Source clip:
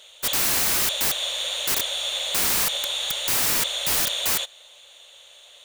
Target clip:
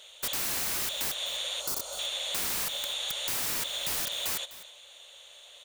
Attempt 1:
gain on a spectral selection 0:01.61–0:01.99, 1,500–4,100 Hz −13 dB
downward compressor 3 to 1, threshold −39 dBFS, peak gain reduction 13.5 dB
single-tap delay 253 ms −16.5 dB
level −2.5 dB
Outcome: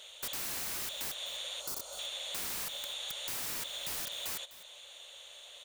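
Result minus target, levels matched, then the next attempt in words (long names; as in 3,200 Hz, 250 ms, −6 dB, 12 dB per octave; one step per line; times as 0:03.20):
downward compressor: peak gain reduction +6.5 dB
gain on a spectral selection 0:01.61–0:01.99, 1,500–4,100 Hz −13 dB
downward compressor 3 to 1, threshold −29 dBFS, peak gain reduction 7 dB
single-tap delay 253 ms −16.5 dB
level −2.5 dB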